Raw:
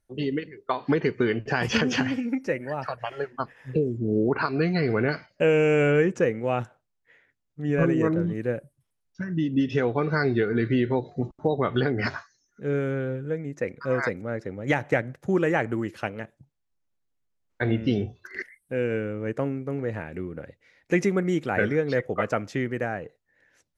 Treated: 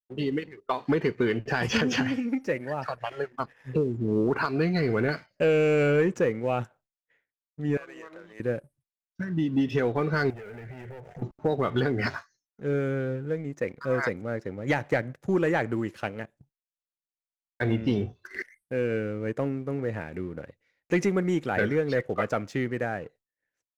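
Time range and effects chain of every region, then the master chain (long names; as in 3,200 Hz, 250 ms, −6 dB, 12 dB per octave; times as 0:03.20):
0:07.77–0:08.40: high-pass filter 820 Hz + downward compressor 8 to 1, threshold −38 dBFS
0:10.30–0:11.22: leveller curve on the samples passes 3 + phaser with its sweep stopped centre 1,100 Hz, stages 6 + downward compressor 10 to 1, threshold −37 dBFS
whole clip: downward expander −52 dBFS; leveller curve on the samples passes 1; level −4.5 dB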